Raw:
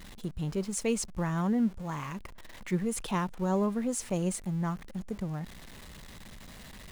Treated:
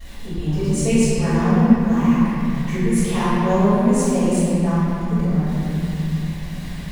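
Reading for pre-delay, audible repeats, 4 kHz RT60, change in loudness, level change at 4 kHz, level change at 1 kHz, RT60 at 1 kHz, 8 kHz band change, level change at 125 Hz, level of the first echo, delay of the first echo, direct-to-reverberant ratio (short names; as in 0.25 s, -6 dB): 3 ms, none, 1.9 s, +13.0 dB, +10.5 dB, +12.5 dB, 2.7 s, +8.0 dB, +15.0 dB, none, none, -17.5 dB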